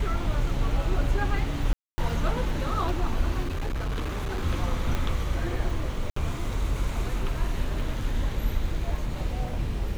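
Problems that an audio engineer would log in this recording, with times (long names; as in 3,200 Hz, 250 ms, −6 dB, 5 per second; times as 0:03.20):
0:01.73–0:01.98: drop-out 250 ms
0:03.42–0:04.43: clipping −25.5 dBFS
0:04.95: click −15 dBFS
0:06.10–0:06.16: drop-out 64 ms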